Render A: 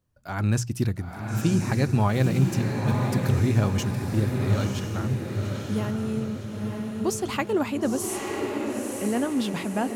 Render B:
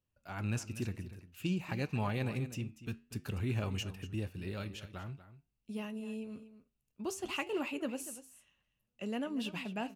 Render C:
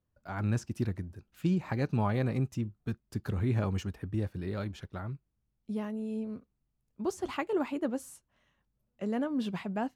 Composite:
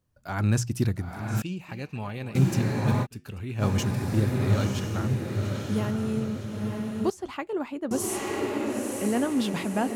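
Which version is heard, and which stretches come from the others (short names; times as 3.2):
A
1.42–2.35 from B
3.04–3.61 from B, crossfade 0.06 s
7.1–7.91 from C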